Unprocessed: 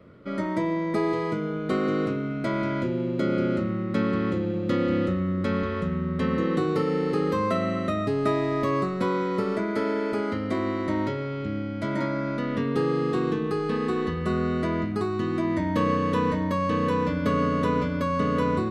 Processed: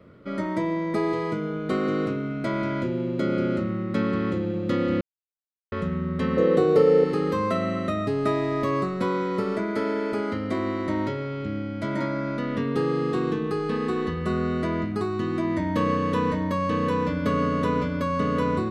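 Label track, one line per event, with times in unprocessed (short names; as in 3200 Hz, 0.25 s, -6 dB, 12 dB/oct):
5.010000	5.720000	mute
6.370000	7.040000	band shelf 530 Hz +10.5 dB 1 oct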